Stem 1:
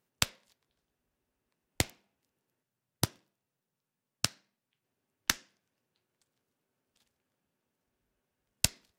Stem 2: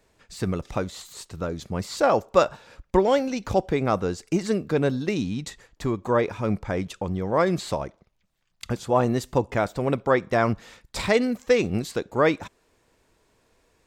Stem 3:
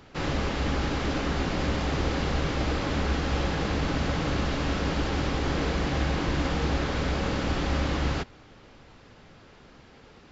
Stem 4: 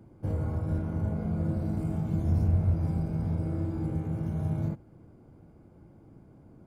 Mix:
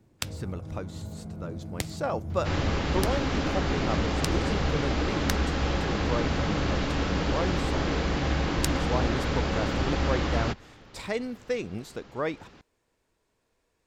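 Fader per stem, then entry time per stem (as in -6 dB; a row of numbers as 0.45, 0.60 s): -4.0, -10.0, 0.0, -8.5 dB; 0.00, 0.00, 2.30, 0.00 s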